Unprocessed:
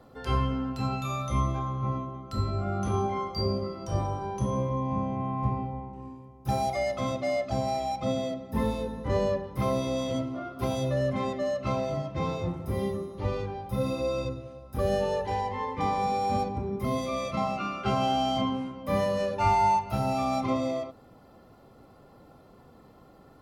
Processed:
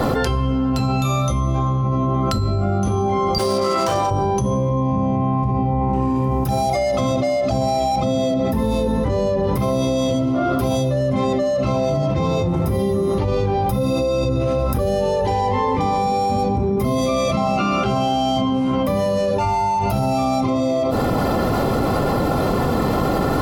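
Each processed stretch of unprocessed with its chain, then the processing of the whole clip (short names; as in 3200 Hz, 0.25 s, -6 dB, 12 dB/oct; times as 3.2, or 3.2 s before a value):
3.38–4.11 median filter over 9 samples + HPF 1400 Hz 6 dB/oct + high shelf 10000 Hz -10 dB
whole clip: dynamic EQ 1700 Hz, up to -7 dB, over -46 dBFS, Q 0.88; fast leveller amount 100%; gain +3.5 dB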